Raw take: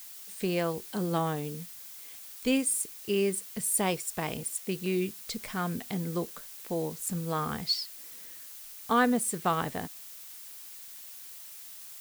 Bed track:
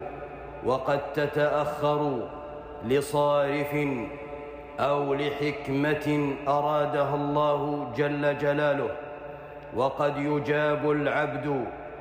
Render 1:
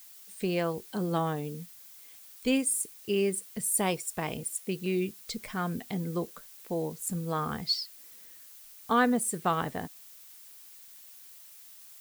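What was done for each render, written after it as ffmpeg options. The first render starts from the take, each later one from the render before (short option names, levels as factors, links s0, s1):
-af "afftdn=nr=6:nf=-46"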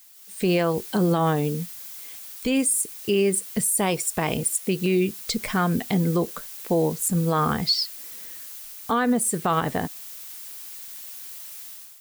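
-af "dynaudnorm=f=140:g=5:m=3.98,alimiter=limit=0.224:level=0:latency=1:release=109"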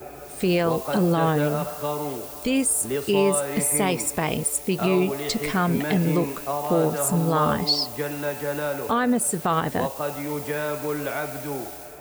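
-filter_complex "[1:a]volume=0.708[s0];[0:a][s0]amix=inputs=2:normalize=0"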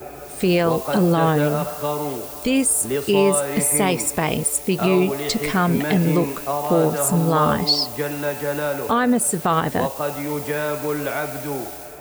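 -af "volume=1.5"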